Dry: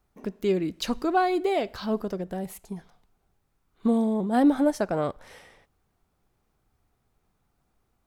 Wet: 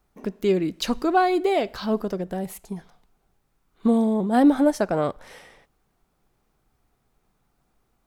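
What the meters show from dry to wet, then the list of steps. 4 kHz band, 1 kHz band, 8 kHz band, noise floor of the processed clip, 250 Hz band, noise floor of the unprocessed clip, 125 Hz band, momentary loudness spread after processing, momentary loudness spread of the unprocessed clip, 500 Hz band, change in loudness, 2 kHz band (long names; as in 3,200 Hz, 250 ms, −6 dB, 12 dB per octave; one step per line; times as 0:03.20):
+3.5 dB, +3.5 dB, +3.5 dB, −71 dBFS, +3.5 dB, −73 dBFS, +3.0 dB, 15 LU, 15 LU, +3.5 dB, +3.5 dB, +3.5 dB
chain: parametric band 86 Hz −11.5 dB 0.38 octaves
level +3.5 dB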